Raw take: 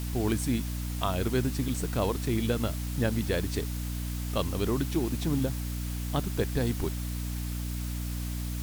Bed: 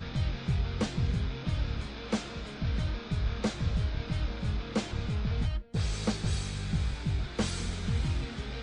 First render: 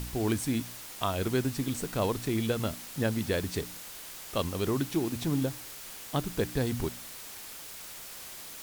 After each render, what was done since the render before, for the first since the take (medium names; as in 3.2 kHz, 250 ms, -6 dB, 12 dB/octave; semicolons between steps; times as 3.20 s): de-hum 60 Hz, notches 5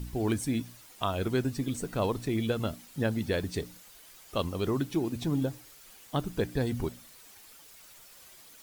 noise reduction 11 dB, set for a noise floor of -44 dBFS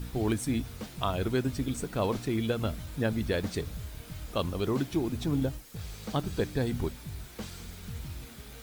add bed -10 dB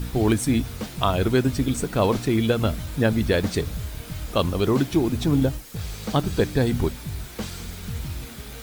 trim +8.5 dB